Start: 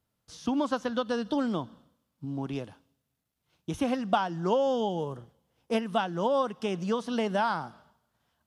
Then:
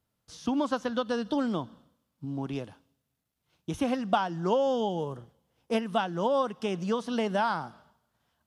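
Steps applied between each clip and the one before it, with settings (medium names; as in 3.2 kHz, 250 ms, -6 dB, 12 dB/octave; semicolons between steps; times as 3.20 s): no audible change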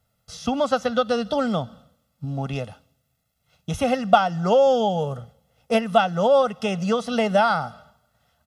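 comb 1.5 ms, depth 82%; trim +6.5 dB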